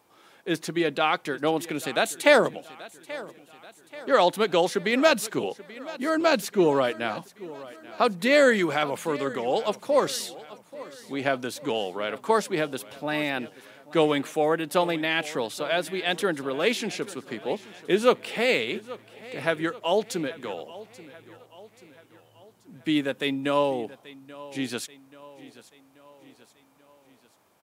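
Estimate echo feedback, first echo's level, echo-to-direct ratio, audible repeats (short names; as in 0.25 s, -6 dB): 52%, -18.5 dB, -17.0 dB, 3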